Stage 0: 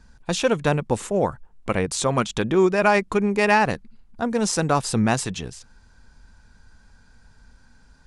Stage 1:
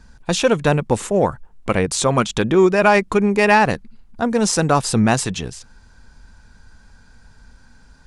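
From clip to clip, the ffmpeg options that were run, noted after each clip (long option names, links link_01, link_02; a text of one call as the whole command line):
ffmpeg -i in.wav -af "acontrast=24" out.wav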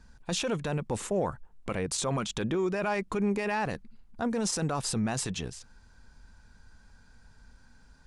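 ffmpeg -i in.wav -af "alimiter=limit=-12.5dB:level=0:latency=1:release=16,volume=-8.5dB" out.wav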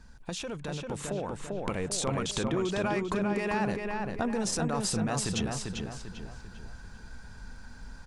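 ffmpeg -i in.wav -filter_complex "[0:a]acompressor=threshold=-37dB:ratio=6,asplit=2[link_01][link_02];[link_02]adelay=395,lowpass=frequency=4000:poles=1,volume=-3.5dB,asplit=2[link_03][link_04];[link_04]adelay=395,lowpass=frequency=4000:poles=1,volume=0.42,asplit=2[link_05][link_06];[link_06]adelay=395,lowpass=frequency=4000:poles=1,volume=0.42,asplit=2[link_07][link_08];[link_08]adelay=395,lowpass=frequency=4000:poles=1,volume=0.42,asplit=2[link_09][link_10];[link_10]adelay=395,lowpass=frequency=4000:poles=1,volume=0.42[link_11];[link_03][link_05][link_07][link_09][link_11]amix=inputs=5:normalize=0[link_12];[link_01][link_12]amix=inputs=2:normalize=0,dynaudnorm=framelen=220:gausssize=13:maxgain=6dB,volume=2.5dB" out.wav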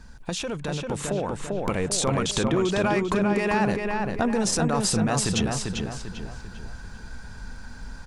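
ffmpeg -i in.wav -af "asoftclip=type=hard:threshold=-19.5dB,volume=6.5dB" out.wav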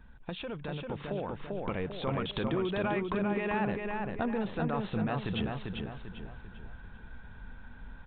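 ffmpeg -i in.wav -af "aresample=8000,aresample=44100,volume=-8dB" out.wav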